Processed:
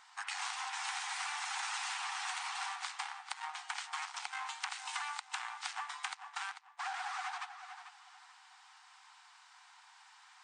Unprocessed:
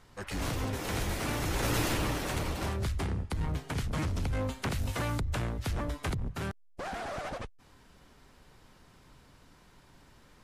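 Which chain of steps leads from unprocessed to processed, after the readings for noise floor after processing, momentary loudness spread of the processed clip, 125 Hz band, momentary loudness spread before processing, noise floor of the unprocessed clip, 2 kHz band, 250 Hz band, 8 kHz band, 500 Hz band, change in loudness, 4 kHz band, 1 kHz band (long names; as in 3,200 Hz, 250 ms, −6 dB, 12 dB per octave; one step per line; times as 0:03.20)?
−61 dBFS, 21 LU, below −40 dB, 8 LU, −59 dBFS, −0.5 dB, below −40 dB, −2.0 dB, −25.0 dB, −6.0 dB, −0.5 dB, −0.5 dB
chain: linear-phase brick-wall band-pass 720–9,400 Hz
on a send: tape delay 440 ms, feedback 27%, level −12 dB, low-pass 5,500 Hz
on the sum: downward compressor 10 to 1, threshold −39 dBFS, peak gain reduction 9.5 dB
level +3.5 dB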